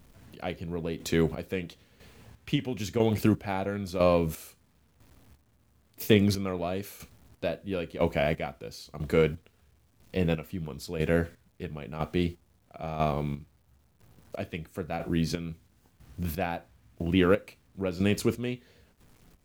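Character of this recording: a quantiser's noise floor 10-bit, dither none; chopped level 1 Hz, depth 65%, duty 35%

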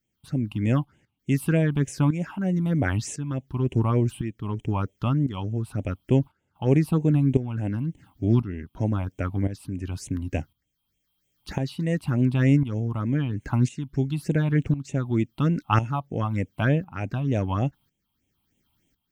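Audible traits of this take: tremolo saw up 0.95 Hz, depth 75%; phasing stages 6, 3.3 Hz, lowest notch 450–1300 Hz

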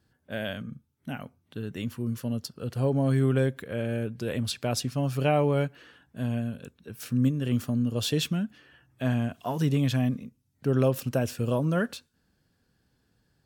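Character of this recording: noise floor -72 dBFS; spectral tilt -6.5 dB/oct

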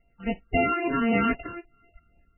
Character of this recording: a buzz of ramps at a fixed pitch in blocks of 64 samples; random-step tremolo; phasing stages 8, 3.8 Hz, lowest notch 620–1500 Hz; MP3

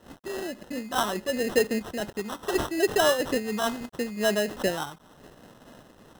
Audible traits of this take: a quantiser's noise floor 8-bit, dither none; phasing stages 6, 0.75 Hz, lowest notch 540–2100 Hz; aliases and images of a low sample rate 2300 Hz, jitter 0%; noise-modulated level

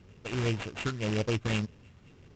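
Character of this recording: a buzz of ramps at a fixed pitch in blocks of 16 samples; phasing stages 6, 1.9 Hz, lowest notch 650–4500 Hz; aliases and images of a low sample rate 5400 Hz, jitter 20%; Vorbis

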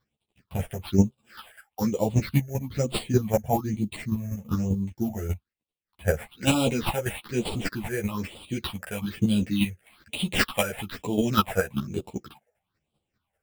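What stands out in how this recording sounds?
aliases and images of a low sample rate 6400 Hz, jitter 0%; phasing stages 6, 1.1 Hz, lowest notch 270–1700 Hz; chopped level 5.1 Hz, depth 60%, duty 15%; a shimmering, thickened sound

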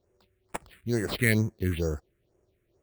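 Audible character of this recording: aliases and images of a low sample rate 6200 Hz, jitter 0%; phasing stages 4, 2.2 Hz, lowest notch 780–4100 Hz

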